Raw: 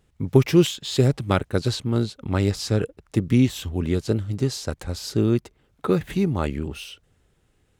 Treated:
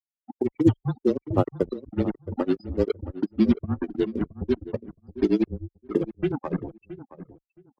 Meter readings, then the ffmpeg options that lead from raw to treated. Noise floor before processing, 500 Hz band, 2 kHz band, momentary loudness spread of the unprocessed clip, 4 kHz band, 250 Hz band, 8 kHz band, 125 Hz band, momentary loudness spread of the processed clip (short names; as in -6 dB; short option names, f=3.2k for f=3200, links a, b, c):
-65 dBFS, -2.5 dB, -9.5 dB, 11 LU, -16.5 dB, -1.5 dB, under -25 dB, -8.5 dB, 16 LU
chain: -filter_complex "[0:a]aemphasis=mode=production:type=bsi,acrossover=split=180|3300[a][b][c];[b]adelay=60[d];[a]adelay=310[e];[e][d][c]amix=inputs=3:normalize=0,acrossover=split=4800[f][g];[g]acompressor=threshold=-35dB:ratio=4:attack=1:release=60[h];[f][h]amix=inputs=2:normalize=0,agate=range=-33dB:threshold=-39dB:ratio=3:detection=peak,afftfilt=real='re*gte(hypot(re,im),0.141)':imag='im*gte(hypot(re,im),0.141)':win_size=1024:overlap=0.75,equalizer=f=290:t=o:w=1.8:g=5,acrossover=split=930[i][j];[i]acrusher=bits=4:mix=0:aa=0.5[k];[j]acompressor=threshold=-51dB:ratio=4[l];[k][l]amix=inputs=2:normalize=0,afreqshift=-24,tremolo=f=9.9:d=0.93,afftdn=nr=19:nf=-40,asplit=2[m][n];[n]adelay=670,lowpass=f=1.4k:p=1,volume=-14dB,asplit=2[o][p];[p]adelay=670,lowpass=f=1.4k:p=1,volume=0.19[q];[o][q]amix=inputs=2:normalize=0[r];[m][r]amix=inputs=2:normalize=0,volume=4.5dB"